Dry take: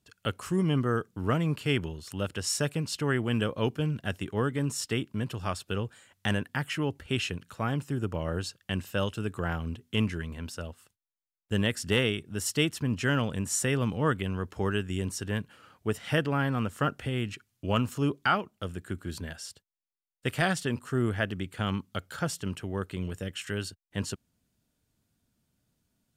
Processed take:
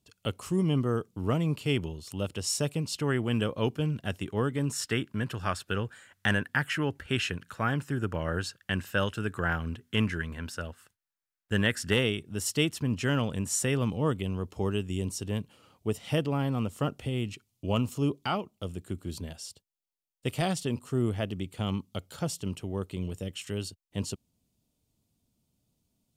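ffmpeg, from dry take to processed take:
-af "asetnsamples=n=441:p=0,asendcmd='2.96 equalizer g -3.5;4.73 equalizer g 7.5;11.94 equalizer g -4.5;13.9 equalizer g -14',equalizer=f=1.6k:t=o:w=0.66:g=-10"

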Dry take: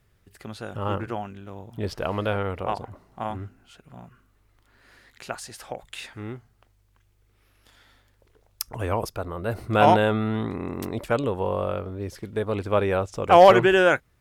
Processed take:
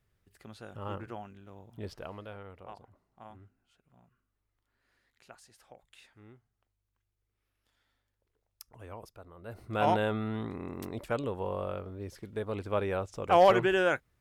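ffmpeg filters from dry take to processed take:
-af "afade=t=out:st=1.82:d=0.43:silence=0.375837,afade=t=in:st=9.36:d=0.66:silence=0.281838"

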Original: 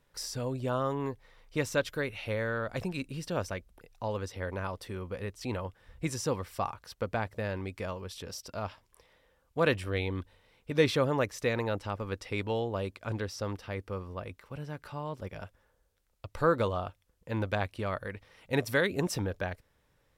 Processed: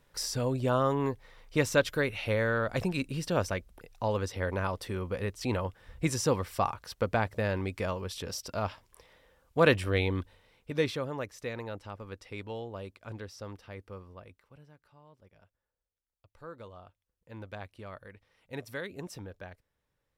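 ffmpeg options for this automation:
-af "volume=13dB,afade=t=out:st=10.04:d=0.97:silence=0.266073,afade=t=out:st=13.93:d=0.88:silence=0.237137,afade=t=in:st=16.47:d=1.22:silence=0.354813"

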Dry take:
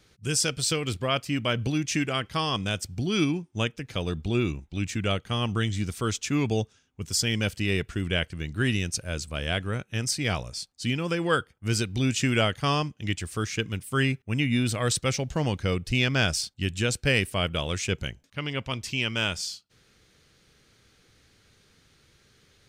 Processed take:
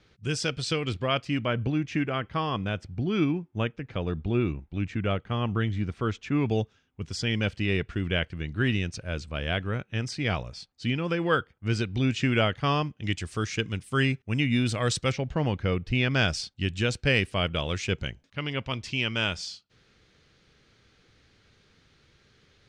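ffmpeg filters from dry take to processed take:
-af "asetnsamples=n=441:p=0,asendcmd='1.45 lowpass f 2100;6.46 lowpass f 3400;13.04 lowpass f 6400;15.12 lowpass f 2800;16.11 lowpass f 4800',lowpass=4k"

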